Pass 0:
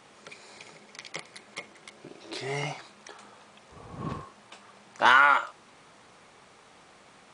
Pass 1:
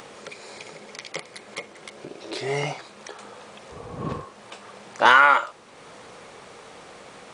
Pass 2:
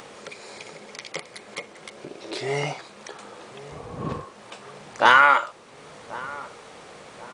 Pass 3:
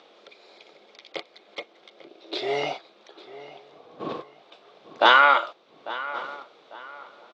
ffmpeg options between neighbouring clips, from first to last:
-filter_complex "[0:a]equalizer=f=490:t=o:w=0.58:g=6.5,asplit=2[a][b];[b]acompressor=mode=upward:threshold=-34dB:ratio=2.5,volume=-2.5dB[c];[a][c]amix=inputs=2:normalize=0,volume=-1dB"
-filter_complex "[0:a]asplit=2[a][b];[b]adelay=1085,lowpass=f=900:p=1,volume=-15.5dB,asplit=2[c][d];[d]adelay=1085,lowpass=f=900:p=1,volume=0.54,asplit=2[e][f];[f]adelay=1085,lowpass=f=900:p=1,volume=0.54,asplit=2[g][h];[h]adelay=1085,lowpass=f=900:p=1,volume=0.54,asplit=2[i][j];[j]adelay=1085,lowpass=f=900:p=1,volume=0.54[k];[a][c][e][g][i][k]amix=inputs=6:normalize=0"
-filter_complex "[0:a]agate=range=-11dB:threshold=-33dB:ratio=16:detection=peak,highpass=320,equalizer=f=330:t=q:w=4:g=6,equalizer=f=680:t=q:w=4:g=5,equalizer=f=960:t=q:w=4:g=-3,equalizer=f=1.8k:t=q:w=4:g=-5,equalizer=f=3.6k:t=q:w=4:g=8,lowpass=f=4.9k:w=0.5412,lowpass=f=4.9k:w=1.3066,asplit=2[a][b];[b]adelay=847,lowpass=f=3.2k:p=1,volume=-16dB,asplit=2[c][d];[d]adelay=847,lowpass=f=3.2k:p=1,volume=0.34,asplit=2[e][f];[f]adelay=847,lowpass=f=3.2k:p=1,volume=0.34[g];[a][c][e][g]amix=inputs=4:normalize=0"

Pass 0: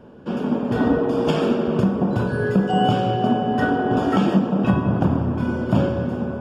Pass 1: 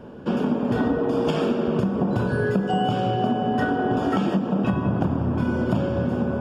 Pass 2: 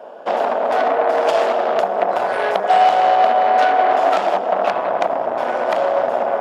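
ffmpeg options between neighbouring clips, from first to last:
-af "acompressor=threshold=-23dB:ratio=6,volume=4dB"
-af "aeval=exprs='0.376*(cos(1*acos(clip(val(0)/0.376,-1,1)))-cos(1*PI/2))+0.0299*(cos(5*acos(clip(val(0)/0.376,-1,1)))-cos(5*PI/2))+0.133*(cos(6*acos(clip(val(0)/0.376,-1,1)))-cos(6*PI/2))+0.168*(cos(8*acos(clip(val(0)/0.376,-1,1)))-cos(8*PI/2))':c=same,highpass=f=660:t=q:w=4.9"

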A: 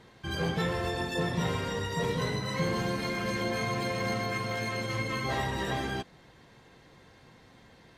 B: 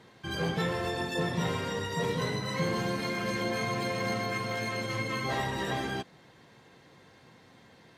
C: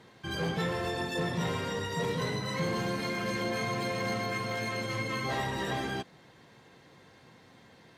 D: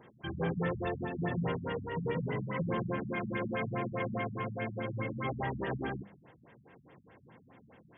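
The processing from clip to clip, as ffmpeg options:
-af "highpass=100"
-af "asoftclip=type=tanh:threshold=-22dB"
-af "bandreject=f=50:t=h:w=6,bandreject=f=100:t=h:w=6,bandreject=f=150:t=h:w=6,bandreject=f=200:t=h:w=6,afftfilt=real='re*lt(b*sr/1024,220*pow(3600/220,0.5+0.5*sin(2*PI*4.8*pts/sr)))':imag='im*lt(b*sr/1024,220*pow(3600/220,0.5+0.5*sin(2*PI*4.8*pts/sr)))':win_size=1024:overlap=0.75"

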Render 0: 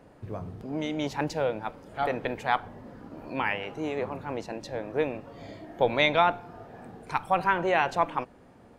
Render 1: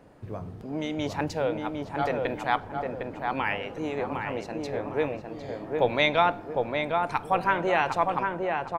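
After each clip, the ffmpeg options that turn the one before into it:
-filter_complex "[0:a]asplit=2[a][b];[b]adelay=756,lowpass=f=1.6k:p=1,volume=-3dB,asplit=2[c][d];[d]adelay=756,lowpass=f=1.6k:p=1,volume=0.4,asplit=2[e][f];[f]adelay=756,lowpass=f=1.6k:p=1,volume=0.4,asplit=2[g][h];[h]adelay=756,lowpass=f=1.6k:p=1,volume=0.4,asplit=2[i][j];[j]adelay=756,lowpass=f=1.6k:p=1,volume=0.4[k];[a][c][e][g][i][k]amix=inputs=6:normalize=0"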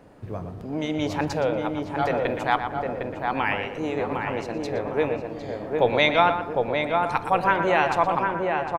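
-filter_complex "[0:a]asplit=2[a][b];[b]adelay=118,lowpass=f=2.8k:p=1,volume=-8dB,asplit=2[c][d];[d]adelay=118,lowpass=f=2.8k:p=1,volume=0.3,asplit=2[e][f];[f]adelay=118,lowpass=f=2.8k:p=1,volume=0.3,asplit=2[g][h];[h]adelay=118,lowpass=f=2.8k:p=1,volume=0.3[i];[a][c][e][g][i]amix=inputs=5:normalize=0,volume=3dB"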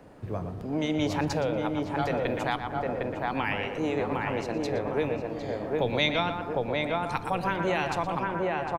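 -filter_complex "[0:a]acrossover=split=300|3000[a][b][c];[b]acompressor=threshold=-27dB:ratio=6[d];[a][d][c]amix=inputs=3:normalize=0"

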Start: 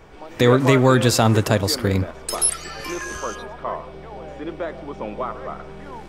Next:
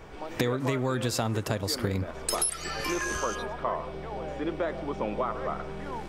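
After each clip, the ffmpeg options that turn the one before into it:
-af "acompressor=threshold=-24dB:ratio=12"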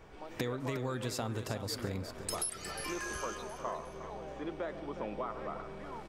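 -af "aecho=1:1:359|718|1077|1436:0.282|0.118|0.0497|0.0209,volume=-8.5dB"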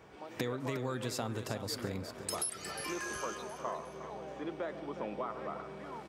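-af "highpass=100"

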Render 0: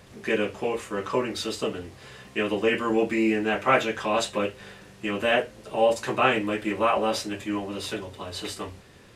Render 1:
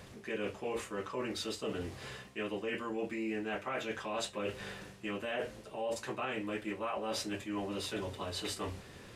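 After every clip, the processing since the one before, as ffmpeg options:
-af "alimiter=limit=-14dB:level=0:latency=1:release=224,areverse,acompressor=threshold=-35dB:ratio=6,areverse"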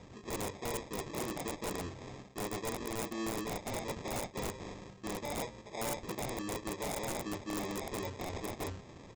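-af "equalizer=f=2.7k:w=4.6:g=-8.5,aresample=16000,acrusher=samples=11:mix=1:aa=0.000001,aresample=44100,aeval=exprs='(mod(33.5*val(0)+1,2)-1)/33.5':c=same"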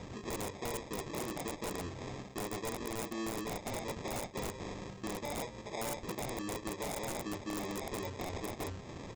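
-af "acompressor=threshold=-47dB:ratio=2.5,volume=7dB"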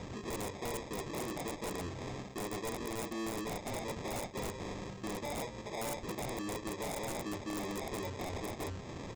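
-af "asoftclip=type=tanh:threshold=-35.5dB,volume=2.5dB"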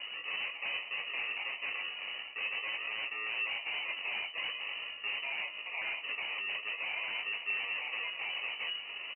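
-filter_complex "[0:a]flanger=delay=0.7:depth=6.5:regen=64:speed=0.46:shape=triangular,asplit=2[a][b];[b]adelay=19,volume=-7.5dB[c];[a][c]amix=inputs=2:normalize=0,lowpass=f=2.6k:t=q:w=0.5098,lowpass=f=2.6k:t=q:w=0.6013,lowpass=f=2.6k:t=q:w=0.9,lowpass=f=2.6k:t=q:w=2.563,afreqshift=-3000,volume=5.5dB"

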